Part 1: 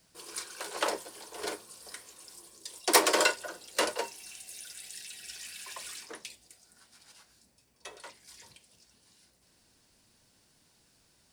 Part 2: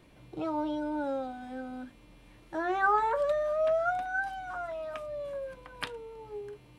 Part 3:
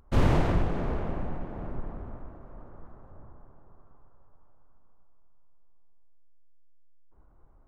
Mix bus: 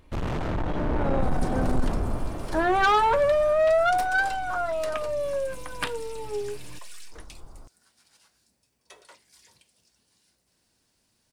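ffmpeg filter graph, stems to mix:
ffmpeg -i stem1.wav -i stem2.wav -i stem3.wav -filter_complex "[0:a]acompressor=threshold=-33dB:ratio=6,adelay=1050,volume=-16.5dB[link_01];[1:a]aeval=exprs='clip(val(0),-1,0.0473)':channel_layout=same,volume=-2.5dB[link_02];[2:a]volume=1.5dB[link_03];[link_01][link_02][link_03]amix=inputs=3:normalize=0,asoftclip=type=tanh:threshold=-26.5dB,dynaudnorm=framelen=420:gausssize=5:maxgain=12dB" out.wav

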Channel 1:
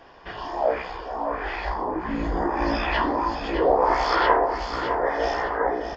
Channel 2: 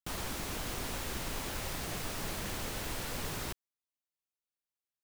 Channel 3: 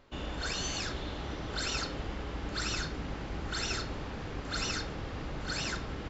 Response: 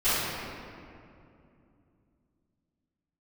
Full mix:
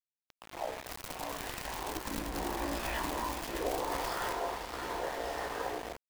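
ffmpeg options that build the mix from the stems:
-filter_complex "[0:a]alimiter=limit=-13.5dB:level=0:latency=1:release=173,volume=-12.5dB,asplit=3[link_01][link_02][link_03];[link_02]volume=-21.5dB[link_04];[link_03]volume=-12.5dB[link_05];[1:a]acrusher=bits=4:mix=0:aa=0.5,adelay=800,volume=-0.5dB[link_06];[3:a]atrim=start_sample=2205[link_07];[link_04][link_07]afir=irnorm=-1:irlink=0[link_08];[link_05]aecho=0:1:220:1[link_09];[link_01][link_06][link_08][link_09]amix=inputs=4:normalize=0,anlmdn=0.0631,aeval=exprs='val(0)*gte(abs(val(0)),0.0119)':channel_layout=same"

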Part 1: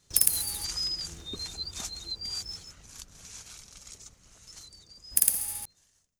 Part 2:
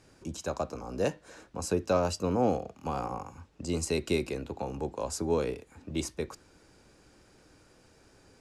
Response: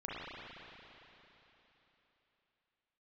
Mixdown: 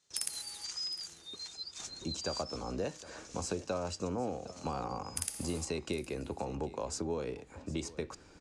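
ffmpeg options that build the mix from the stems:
-filter_complex "[0:a]highpass=frequency=510:poles=1,volume=-6.5dB,asplit=2[link_01][link_02];[link_02]volume=-19.5dB[link_03];[1:a]acompressor=threshold=-36dB:ratio=4,adelay=1800,volume=2dB,asplit=2[link_04][link_05];[link_05]volume=-18dB[link_06];[link_03][link_06]amix=inputs=2:normalize=0,aecho=0:1:762:1[link_07];[link_01][link_04][link_07]amix=inputs=3:normalize=0,lowpass=frequency=8600:width=0.5412,lowpass=frequency=8600:width=1.3066"

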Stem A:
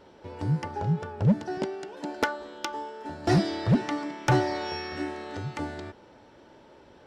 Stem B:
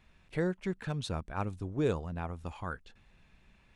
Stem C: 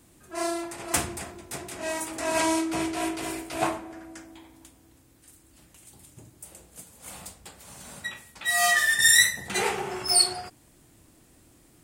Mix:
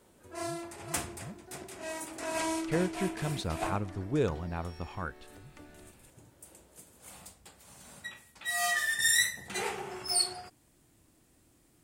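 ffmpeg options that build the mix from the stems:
ffmpeg -i stem1.wav -i stem2.wav -i stem3.wav -filter_complex "[0:a]bandreject=frequency=860:width=12,acompressor=threshold=-44dB:ratio=2,volume=-11dB[link_01];[1:a]adelay=2350,volume=1dB[link_02];[2:a]volume=-8dB[link_03];[link_01][link_02][link_03]amix=inputs=3:normalize=0" out.wav

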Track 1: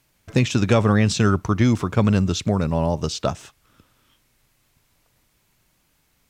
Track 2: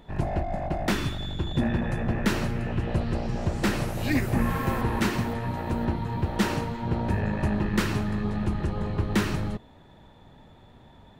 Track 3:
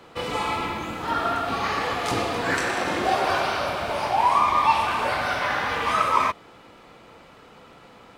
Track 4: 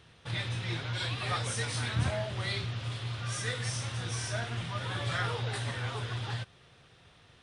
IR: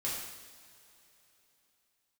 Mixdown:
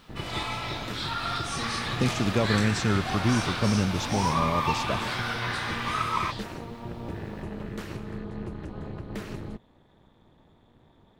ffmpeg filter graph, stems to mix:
-filter_complex "[0:a]adelay=1650,volume=-8.5dB[link_01];[1:a]alimiter=limit=-19dB:level=0:latency=1:release=178,tremolo=f=240:d=0.974,volume=-4.5dB[link_02];[2:a]highpass=1100,volume=-5dB[link_03];[3:a]equalizer=frequency=4600:width=0.87:gain=13,acrusher=bits=9:mix=0:aa=0.000001,volume=-8dB[link_04];[link_01][link_02][link_03][link_04]amix=inputs=4:normalize=0,equalizer=frequency=210:width=0.62:gain=2"

